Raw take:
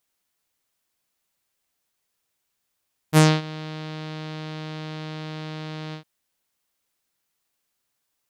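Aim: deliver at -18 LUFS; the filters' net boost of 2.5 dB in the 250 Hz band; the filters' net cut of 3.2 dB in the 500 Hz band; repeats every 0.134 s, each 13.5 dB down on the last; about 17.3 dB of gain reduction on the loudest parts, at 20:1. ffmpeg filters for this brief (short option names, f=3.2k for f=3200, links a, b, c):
-af "equalizer=f=250:t=o:g=7,equalizer=f=500:t=o:g=-6,acompressor=threshold=-27dB:ratio=20,aecho=1:1:134|268:0.211|0.0444,volume=15dB"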